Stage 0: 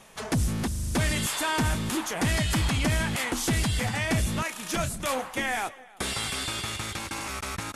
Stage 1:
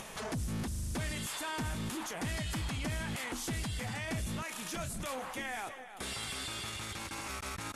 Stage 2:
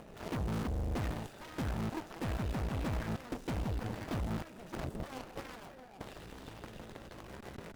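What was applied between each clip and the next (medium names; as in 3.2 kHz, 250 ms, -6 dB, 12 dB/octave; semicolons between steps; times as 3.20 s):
upward compressor, threshold -39 dBFS; peak limiter -31 dBFS, peak gain reduction 11 dB
median filter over 41 samples; Chebyshev shaper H 6 -14 dB, 7 -10 dB, 8 -11 dB, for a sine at -31 dBFS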